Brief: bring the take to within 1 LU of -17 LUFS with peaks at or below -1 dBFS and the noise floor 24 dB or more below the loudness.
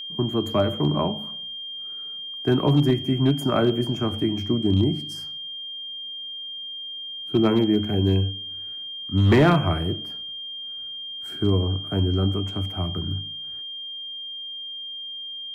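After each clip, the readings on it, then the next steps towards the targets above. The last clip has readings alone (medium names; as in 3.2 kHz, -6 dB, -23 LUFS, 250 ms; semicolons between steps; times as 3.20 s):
clipped samples 0.3%; clipping level -11.0 dBFS; steady tone 3.2 kHz; tone level -32 dBFS; loudness -24.5 LUFS; peak level -11.0 dBFS; loudness target -17.0 LUFS
-> clip repair -11 dBFS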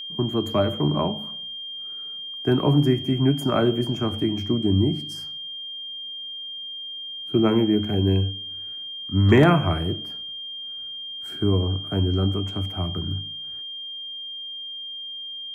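clipped samples 0.0%; steady tone 3.2 kHz; tone level -32 dBFS
-> band-stop 3.2 kHz, Q 30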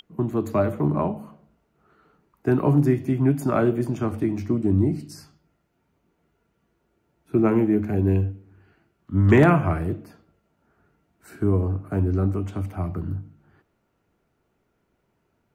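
steady tone not found; loudness -23.0 LUFS; peak level -4.0 dBFS; loudness target -17.0 LUFS
-> trim +6 dB; peak limiter -1 dBFS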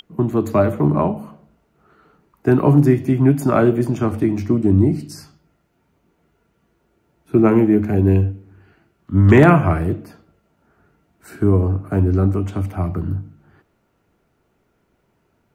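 loudness -17.0 LUFS; peak level -1.0 dBFS; noise floor -65 dBFS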